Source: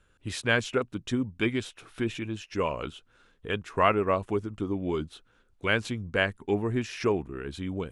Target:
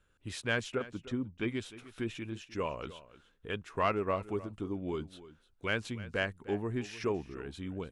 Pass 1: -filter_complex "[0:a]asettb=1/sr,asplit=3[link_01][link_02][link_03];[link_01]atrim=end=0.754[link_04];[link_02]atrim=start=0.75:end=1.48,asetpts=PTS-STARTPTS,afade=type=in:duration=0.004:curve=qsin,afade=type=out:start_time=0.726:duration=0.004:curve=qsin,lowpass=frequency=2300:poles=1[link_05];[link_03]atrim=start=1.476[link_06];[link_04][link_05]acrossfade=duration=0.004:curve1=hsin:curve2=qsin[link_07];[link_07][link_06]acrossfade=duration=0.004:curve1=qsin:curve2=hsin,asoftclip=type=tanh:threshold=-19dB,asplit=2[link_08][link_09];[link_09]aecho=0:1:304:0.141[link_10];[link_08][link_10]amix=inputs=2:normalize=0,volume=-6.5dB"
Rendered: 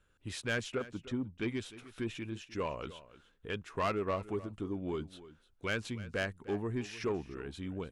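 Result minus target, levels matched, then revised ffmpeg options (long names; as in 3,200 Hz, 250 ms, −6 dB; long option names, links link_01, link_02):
soft clipping: distortion +12 dB
-filter_complex "[0:a]asettb=1/sr,asplit=3[link_01][link_02][link_03];[link_01]atrim=end=0.754[link_04];[link_02]atrim=start=0.75:end=1.48,asetpts=PTS-STARTPTS,afade=type=in:duration=0.004:curve=qsin,afade=type=out:start_time=0.726:duration=0.004:curve=qsin,lowpass=frequency=2300:poles=1[link_05];[link_03]atrim=start=1.476[link_06];[link_04][link_05]acrossfade=duration=0.004:curve1=hsin:curve2=qsin[link_07];[link_07][link_06]acrossfade=duration=0.004:curve1=qsin:curve2=hsin,asoftclip=type=tanh:threshold=-9.5dB,asplit=2[link_08][link_09];[link_09]aecho=0:1:304:0.141[link_10];[link_08][link_10]amix=inputs=2:normalize=0,volume=-6.5dB"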